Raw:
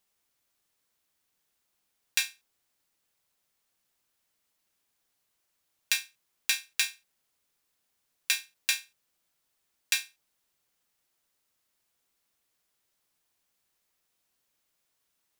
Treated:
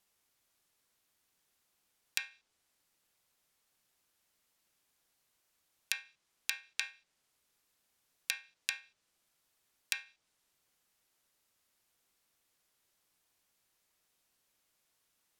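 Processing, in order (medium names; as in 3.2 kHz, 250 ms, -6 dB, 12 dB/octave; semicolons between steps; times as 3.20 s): low-pass that closes with the level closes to 1.8 kHz, closed at -28 dBFS; compression 3:1, threshold -32 dBFS, peak gain reduction 6.5 dB; trim +1 dB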